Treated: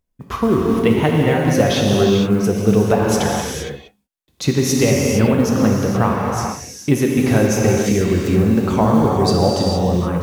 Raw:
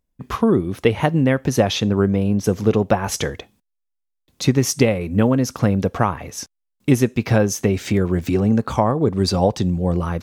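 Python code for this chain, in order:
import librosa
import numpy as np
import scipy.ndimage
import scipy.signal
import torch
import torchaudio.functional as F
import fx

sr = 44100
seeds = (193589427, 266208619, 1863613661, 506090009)

y = fx.rev_gated(x, sr, seeds[0], gate_ms=490, shape='flat', drr_db=-2.0)
y = fx.mod_noise(y, sr, seeds[1], snr_db=33)
y = y * 10.0 ** (-1.0 / 20.0)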